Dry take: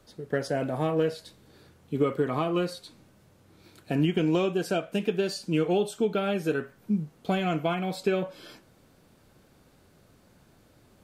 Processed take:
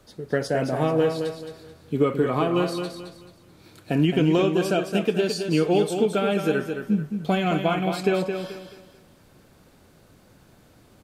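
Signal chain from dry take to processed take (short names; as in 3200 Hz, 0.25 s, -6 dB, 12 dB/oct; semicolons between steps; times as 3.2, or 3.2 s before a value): feedback echo 0.217 s, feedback 32%, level -7 dB; gain +4 dB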